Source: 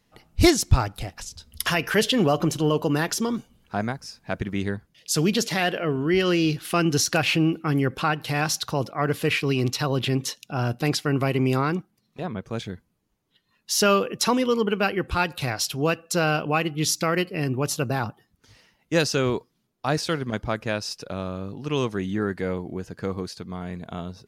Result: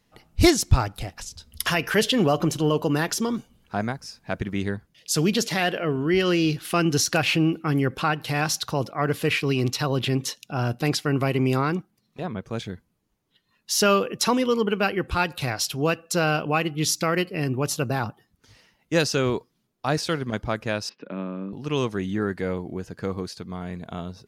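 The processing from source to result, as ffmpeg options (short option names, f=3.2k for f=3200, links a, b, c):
-filter_complex "[0:a]asettb=1/sr,asplit=3[a][b][c];[a]atrim=end=20.894[d];[b]atrim=start=20.89:end=21.53,asetpts=PTS-STARTPTS,afade=t=in:d=0.004:c=qsin,afade=t=out:st=0.636:d=0.004:c=qsin,highpass=f=190:w=0.5412,highpass=f=190:w=1.3066,equalizer=f=200:t=q:w=4:g=6,equalizer=f=290:t=q:w=4:g=4,equalizer=f=480:t=q:w=4:g=-3,equalizer=f=730:t=q:w=4:g=-9,equalizer=f=1.3k:t=q:w=4:g=-4,lowpass=f=2.6k:w=0.5412,lowpass=f=2.6k:w=1.3066[e];[c]atrim=start=21.526[f];[d][e]acrossfade=d=0.004:c1=hsin:c2=qsin[g];[g][f]acrossfade=d=0.004:c1=qsin:c2=hsin"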